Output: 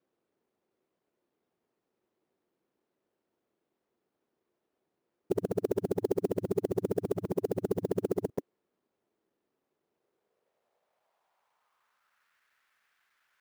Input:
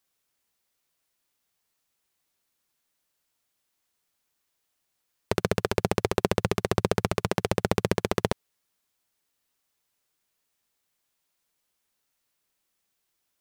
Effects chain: time reversed locally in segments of 100 ms; peaking EQ 290 Hz -7 dB 0.32 oct; in parallel at +1 dB: compressor with a negative ratio -32 dBFS, ratio -1; on the sum: saturation -17.5 dBFS, distortion -5 dB; band-pass sweep 330 Hz -> 1.6 kHz, 9.85–12.37 s; sampling jitter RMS 0.022 ms; trim +5.5 dB

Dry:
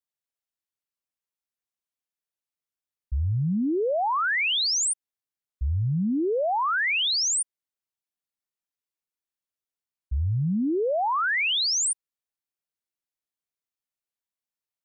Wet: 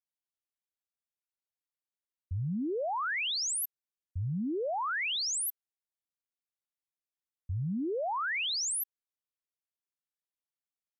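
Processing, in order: speed mistake 33 rpm record played at 45 rpm; trim -8 dB

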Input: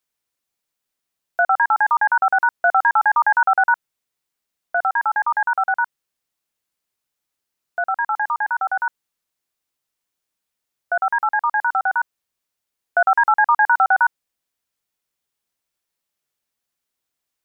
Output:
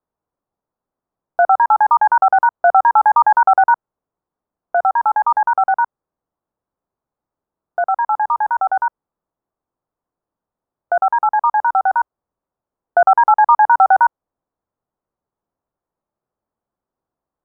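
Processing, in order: low-pass 1.1 kHz 24 dB/octave; dynamic bell 210 Hz, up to -5 dB, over -42 dBFS, Q 0.82; trim +8 dB

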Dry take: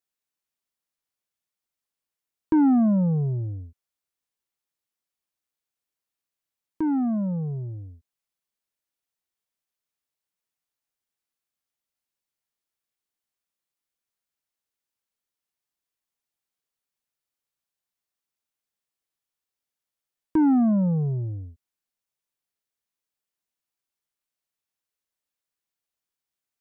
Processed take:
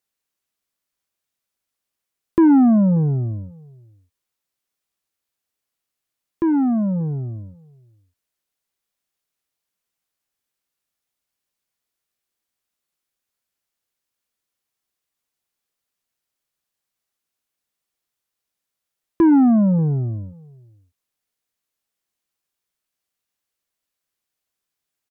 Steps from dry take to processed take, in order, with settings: tape speed +6%; band-stop 900 Hz, Q 22; echo from a far wall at 100 m, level -25 dB; trim +6 dB

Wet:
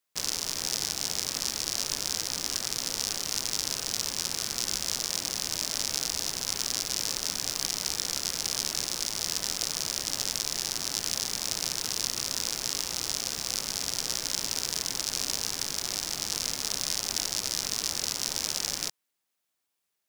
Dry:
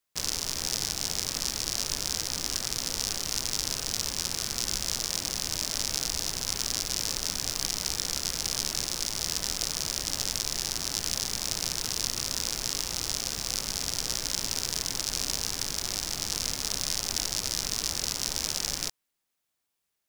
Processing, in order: bass shelf 94 Hz -11.5 dB

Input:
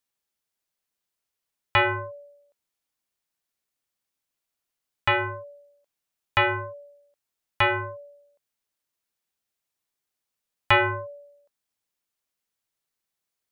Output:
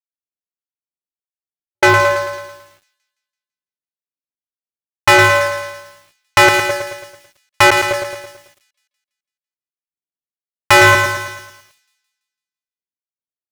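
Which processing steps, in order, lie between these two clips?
local Wiener filter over 25 samples; trance gate ".xx.xx.x" 74 bpm -60 dB; in parallel at -10 dB: crossover distortion -45 dBFS; on the sum: bass shelf 140 Hz -11.5 dB; level-controlled noise filter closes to 390 Hz, open at -24 dBFS; treble shelf 3.6 kHz -10.5 dB; waveshaping leveller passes 5; feedback echo behind a high-pass 167 ms, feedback 45%, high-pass 4.2 kHz, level -7.5 dB; bit-crushed delay 110 ms, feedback 55%, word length 8-bit, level -6 dB; trim +3.5 dB

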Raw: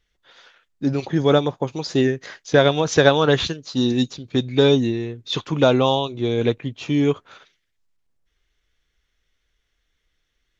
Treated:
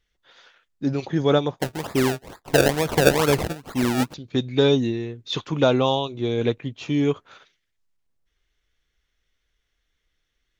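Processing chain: 1.59–4.14 s: decimation with a swept rate 29×, swing 100% 2.2 Hz; trim -2.5 dB

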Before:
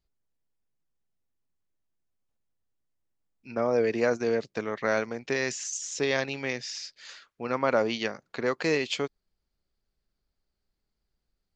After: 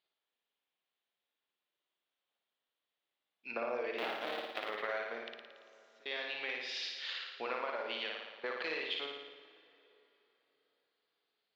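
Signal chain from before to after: 3.98–4.68 s: cycle switcher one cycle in 3, inverted; high-pass 520 Hz 12 dB/octave; resonant high shelf 4.9 kHz -12.5 dB, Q 3; compression 16:1, threshold -37 dBFS, peak gain reduction 17.5 dB; 5.18–6.06 s: inverted gate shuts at -41 dBFS, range -31 dB; 7.63–8.44 s: slow attack 766 ms; flutter echo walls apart 9.7 m, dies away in 1 s; plate-style reverb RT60 3.9 s, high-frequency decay 0.75×, DRR 15 dB; trim +1 dB

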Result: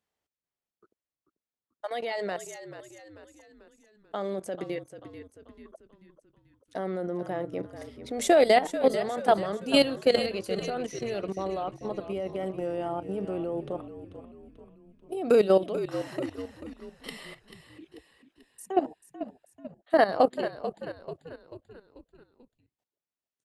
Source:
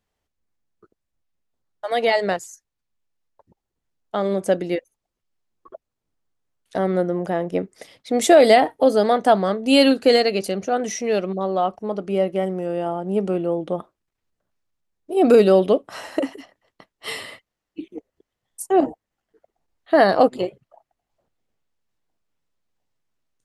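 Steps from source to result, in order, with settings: high-pass 200 Hz 6 dB/octave; level held to a coarse grid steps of 14 dB; on a send: frequency-shifting echo 439 ms, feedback 49%, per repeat -53 Hz, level -11.5 dB; on the sum: trim -3.5 dB

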